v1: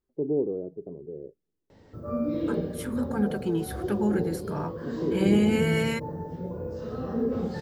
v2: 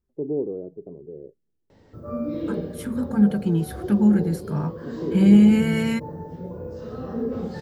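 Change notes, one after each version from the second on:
second voice: add resonant low shelf 280 Hz +8.5 dB, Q 1.5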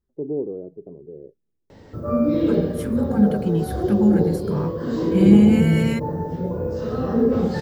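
background +9.0 dB

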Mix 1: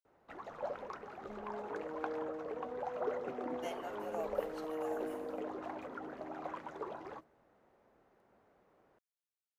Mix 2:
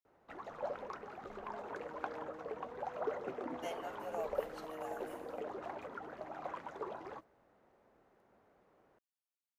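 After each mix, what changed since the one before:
second sound -8.5 dB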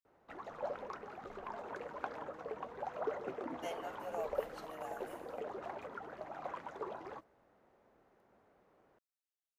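second sound -5.5 dB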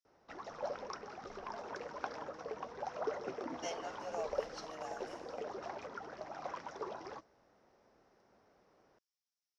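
master: add resonant low-pass 5.5 kHz, resonance Q 7.3

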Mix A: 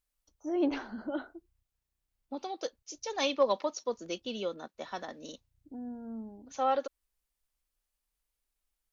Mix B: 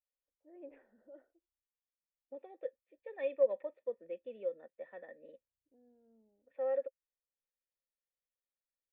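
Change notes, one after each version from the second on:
first voice -10.5 dB; master: add cascade formant filter e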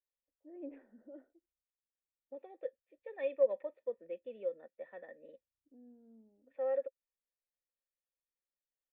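first voice: add peaking EQ 260 Hz +12 dB 0.76 oct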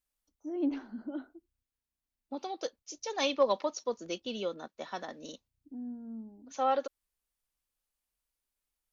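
master: remove cascade formant filter e

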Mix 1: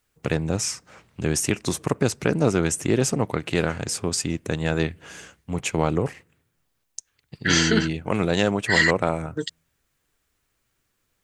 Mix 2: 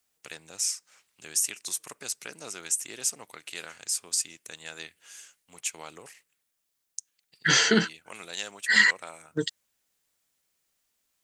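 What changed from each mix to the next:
first voice: add differentiator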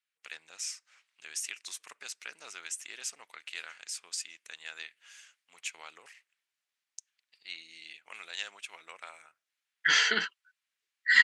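second voice: entry +2.40 s; master: add band-pass filter 2.2 kHz, Q 0.92

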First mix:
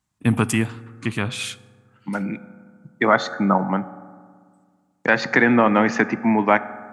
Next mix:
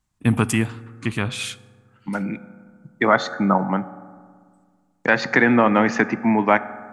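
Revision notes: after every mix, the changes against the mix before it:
master: remove high-pass 79 Hz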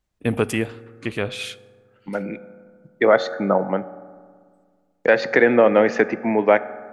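master: add graphic EQ 125/250/500/1000/8000 Hz -7/-5/+11/-8/-8 dB

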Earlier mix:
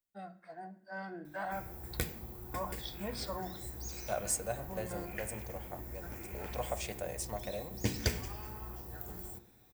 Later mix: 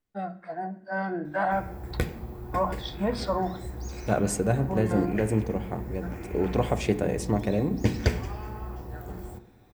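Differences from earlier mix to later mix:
second voice: add resonant low shelf 460 Hz +7.5 dB, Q 3; background -4.5 dB; master: remove pre-emphasis filter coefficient 0.8

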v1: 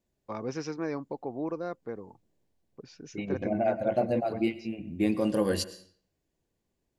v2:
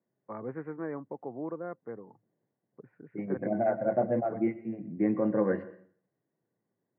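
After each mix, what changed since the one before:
first voice -3.0 dB; master: add Chebyshev band-pass 110–2000 Hz, order 5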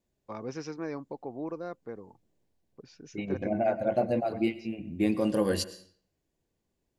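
master: remove Chebyshev band-pass 110–2000 Hz, order 5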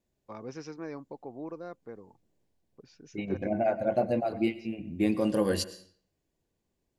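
first voice -3.5 dB

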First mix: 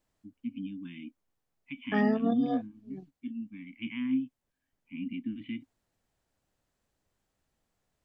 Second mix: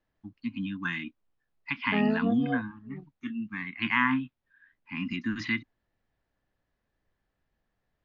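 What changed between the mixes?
first voice: remove cascade formant filter i; master: add distance through air 210 m

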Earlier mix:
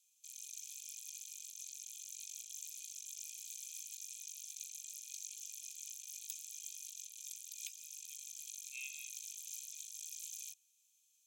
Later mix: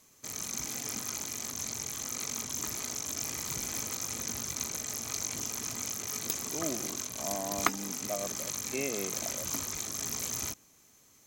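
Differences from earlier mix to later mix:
background +9.0 dB; master: remove rippled Chebyshev high-pass 2.4 kHz, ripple 6 dB

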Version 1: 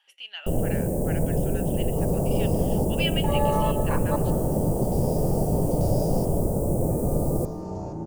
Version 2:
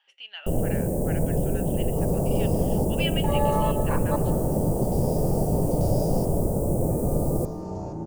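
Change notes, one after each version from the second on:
speech: add distance through air 110 m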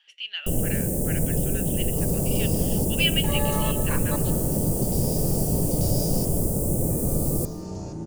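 master: add FFT filter 280 Hz 0 dB, 840 Hz -7 dB, 1.7 kHz +4 dB, 4.1 kHz +10 dB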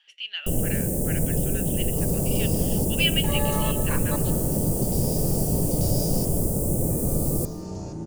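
no change

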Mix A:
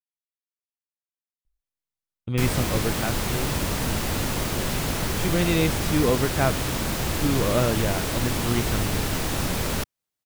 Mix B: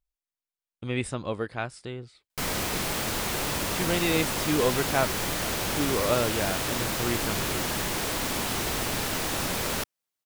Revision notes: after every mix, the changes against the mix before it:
speech: entry -1.45 s; master: add bass shelf 230 Hz -10.5 dB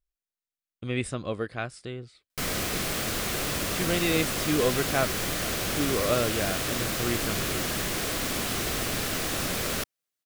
master: add peaking EQ 900 Hz -10 dB 0.25 oct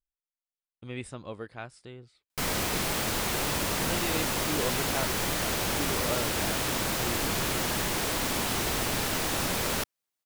speech -8.5 dB; master: add peaking EQ 900 Hz +10 dB 0.25 oct

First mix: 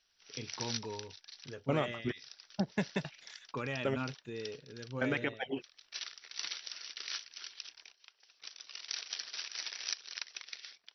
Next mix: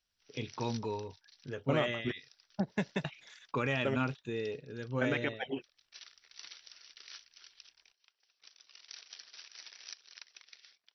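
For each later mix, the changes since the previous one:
first voice +5.5 dB; background -10.0 dB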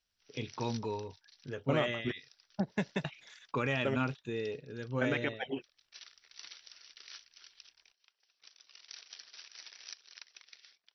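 no change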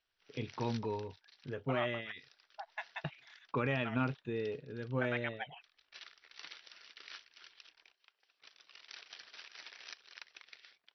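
second voice: add brick-wall FIR high-pass 640 Hz; background +6.5 dB; master: add distance through air 250 m

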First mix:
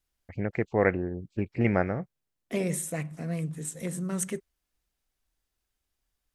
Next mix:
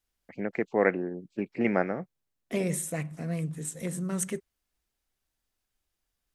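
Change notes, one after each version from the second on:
first voice: add high-pass 180 Hz 24 dB/octave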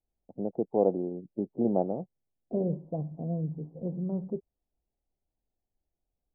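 master: add steep low-pass 840 Hz 48 dB/octave

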